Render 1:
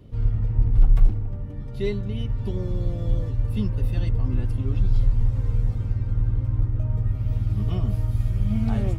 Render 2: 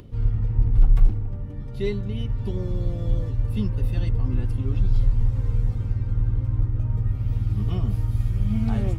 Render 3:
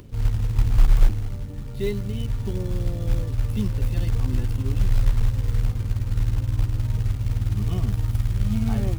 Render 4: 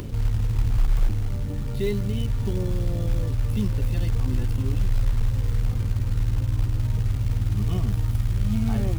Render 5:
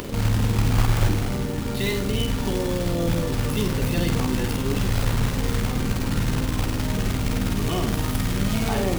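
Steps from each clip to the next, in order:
band-stop 630 Hz, Q 12; upward compressor, threshold -40 dBFS
companded quantiser 6-bit
level flattener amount 50%; trim -6.5 dB
spectral peaks clipped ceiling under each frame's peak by 17 dB; flutter echo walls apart 8 m, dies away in 0.39 s

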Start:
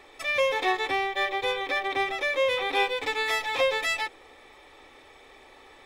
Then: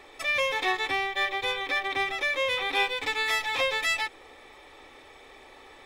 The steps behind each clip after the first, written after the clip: dynamic bell 510 Hz, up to -7 dB, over -39 dBFS, Q 0.87; trim +1.5 dB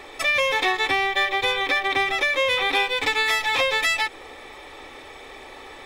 compression, threshold -27 dBFS, peak gain reduction 7 dB; trim +9 dB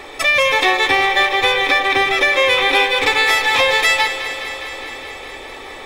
echo whose repeats swap between lows and highs 103 ms, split 910 Hz, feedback 87%, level -10 dB; trim +6.5 dB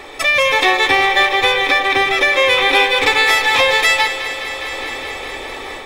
level rider gain up to 5 dB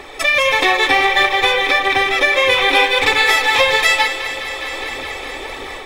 phaser 1.6 Hz, delay 4.2 ms, feedback 35%; trim -1 dB

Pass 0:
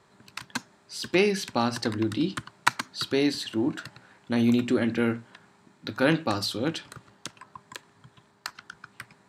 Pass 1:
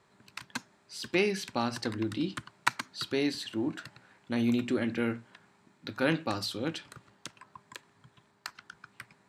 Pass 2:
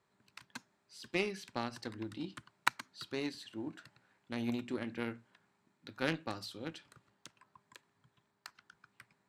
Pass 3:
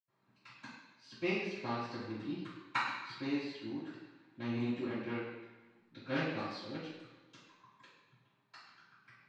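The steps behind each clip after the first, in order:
peaking EQ 2.3 kHz +2.5 dB 0.61 oct; trim -5.5 dB
Chebyshev shaper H 7 -21 dB, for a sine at -7 dBFS; trim -3 dB
reverberation RT60 1.2 s, pre-delay 77 ms; trim +4.5 dB

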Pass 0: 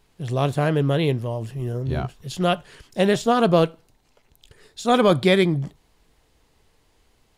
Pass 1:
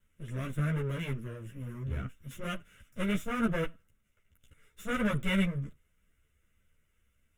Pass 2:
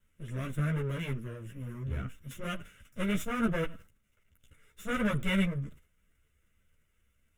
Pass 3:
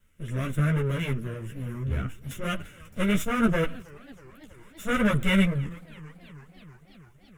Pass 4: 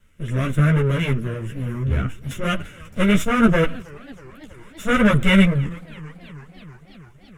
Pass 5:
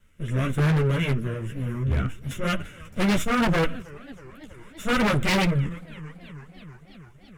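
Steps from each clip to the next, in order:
comb filter that takes the minimum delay 1.4 ms; static phaser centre 1.9 kHz, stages 4; three-phase chorus; trim -5 dB
decay stretcher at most 150 dB/s
modulated delay 327 ms, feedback 74%, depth 195 cents, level -23.5 dB; trim +6.5 dB
treble shelf 12 kHz -12 dB; trim +7.5 dB
wavefolder -13.5 dBFS; trim -2.5 dB

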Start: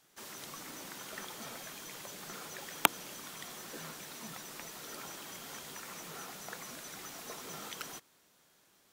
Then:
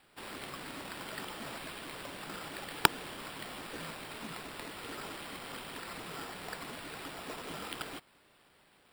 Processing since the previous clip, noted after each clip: sample-and-hold 7×; trim +2.5 dB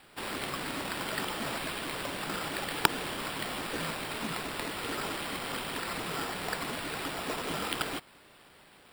loudness maximiser +9 dB; trim -1 dB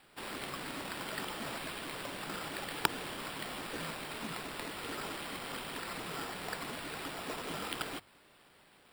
hum notches 50/100 Hz; trim -5.5 dB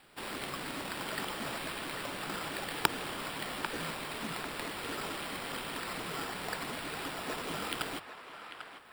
band-passed feedback delay 795 ms, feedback 41%, band-pass 1.4 kHz, level -7.5 dB; trim +2 dB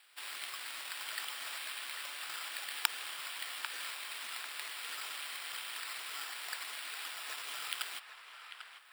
Bessel high-pass 2 kHz, order 2; trim +1 dB

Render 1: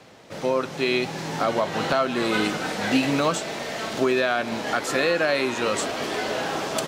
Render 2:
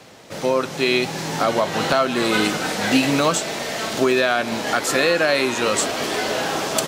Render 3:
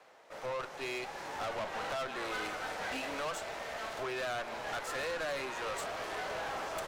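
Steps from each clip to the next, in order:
treble shelf 5.5 kHz +7.5 dB; trim +3.5 dB
three-band isolator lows -22 dB, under 470 Hz, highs -12 dB, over 2.1 kHz; valve stage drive 27 dB, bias 0.65; trim -6.5 dB

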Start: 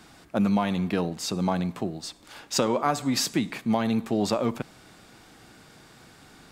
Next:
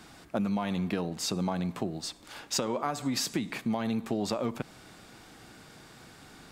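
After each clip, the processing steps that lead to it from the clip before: compression 5:1, threshold -27 dBFS, peak gain reduction 9 dB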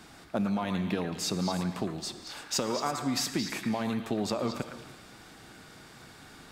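repeats whose band climbs or falls 111 ms, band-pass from 1.5 kHz, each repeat 1.4 oct, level -3 dB; gated-style reverb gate 360 ms flat, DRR 11 dB

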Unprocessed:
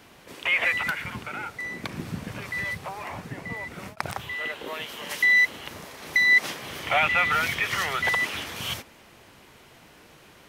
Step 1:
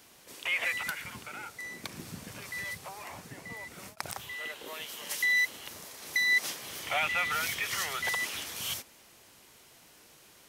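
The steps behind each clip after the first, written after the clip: tone controls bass -3 dB, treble +12 dB; trim -8.5 dB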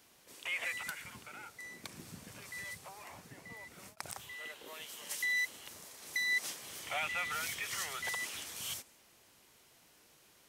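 dynamic bell 8.1 kHz, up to +5 dB, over -53 dBFS, Q 1.5; trim -7 dB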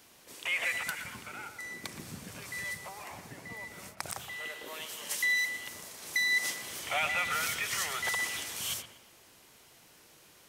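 feedback echo behind a low-pass 120 ms, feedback 36%, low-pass 2.7 kHz, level -9 dB; trim +5.5 dB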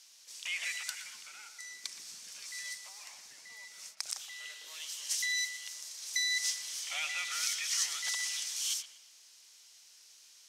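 band-pass filter 5.6 kHz, Q 1.9; trim +7 dB

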